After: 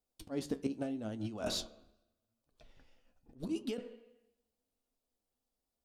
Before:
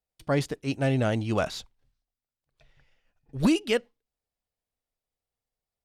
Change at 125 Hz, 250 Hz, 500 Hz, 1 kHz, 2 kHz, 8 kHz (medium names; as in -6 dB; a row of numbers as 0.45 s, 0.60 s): -18.0 dB, -11.0 dB, -13.0 dB, -16.0 dB, -18.5 dB, -5.5 dB